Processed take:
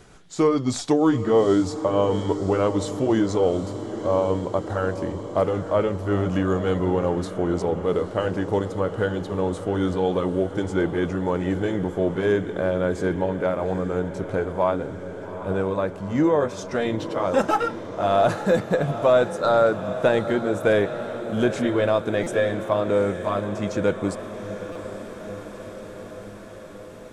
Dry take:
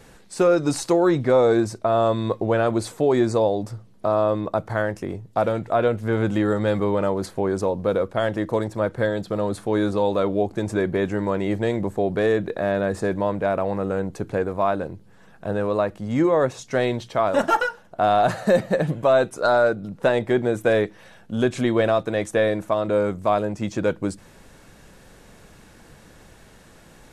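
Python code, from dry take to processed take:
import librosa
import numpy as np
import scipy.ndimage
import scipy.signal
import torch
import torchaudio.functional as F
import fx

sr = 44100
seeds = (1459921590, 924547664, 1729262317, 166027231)

y = fx.pitch_glide(x, sr, semitones=-2.5, runs='ending unshifted')
y = fx.echo_diffused(y, sr, ms=823, feedback_pct=70, wet_db=-12.0)
y = fx.buffer_glitch(y, sr, at_s=(22.23, 24.72), block=256, repeats=5)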